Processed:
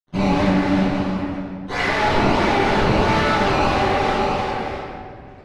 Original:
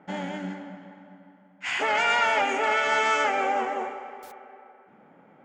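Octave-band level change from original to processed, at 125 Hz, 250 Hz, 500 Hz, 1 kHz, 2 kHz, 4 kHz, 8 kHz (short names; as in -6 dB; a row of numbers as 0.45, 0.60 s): n/a, +18.5 dB, +9.5 dB, +6.0 dB, +3.0 dB, +6.0 dB, +2.5 dB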